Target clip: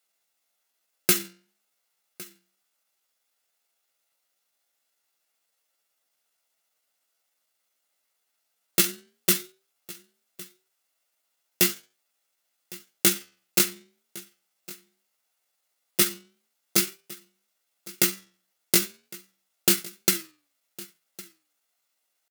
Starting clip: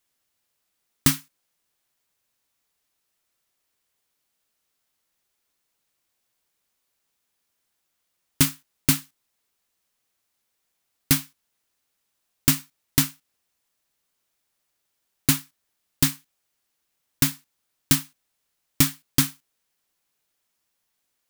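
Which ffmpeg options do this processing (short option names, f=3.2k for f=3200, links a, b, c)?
-filter_complex "[0:a]highpass=220,aecho=1:1:1.9:0.37,asetrate=56889,aresample=44100,flanger=delay=8.7:depth=4.5:regen=-77:speed=0.55:shape=sinusoidal,atempo=0.74,asplit=2[a][b];[b]aecho=0:1:1108:0.0944[c];[a][c]amix=inputs=2:normalize=0,volume=5.5dB"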